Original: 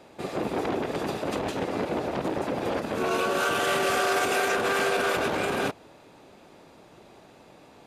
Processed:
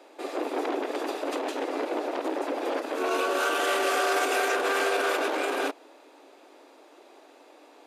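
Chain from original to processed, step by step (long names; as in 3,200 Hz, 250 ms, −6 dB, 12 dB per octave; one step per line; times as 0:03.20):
elliptic high-pass filter 280 Hz, stop band 40 dB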